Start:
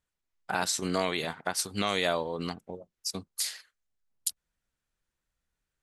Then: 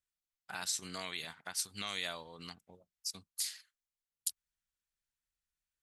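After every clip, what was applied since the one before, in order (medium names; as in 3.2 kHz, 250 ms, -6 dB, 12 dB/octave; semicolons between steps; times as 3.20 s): amplifier tone stack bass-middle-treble 5-5-5; trim +1 dB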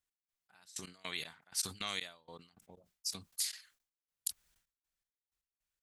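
trance gate "x..xx..." 158 bpm -24 dB; decay stretcher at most 140 dB/s; trim +1 dB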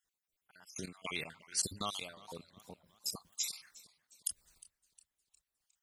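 random holes in the spectrogram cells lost 50%; dynamic bell 3.8 kHz, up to -5 dB, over -54 dBFS, Q 0.83; modulated delay 359 ms, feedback 48%, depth 117 cents, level -20 dB; trim +6.5 dB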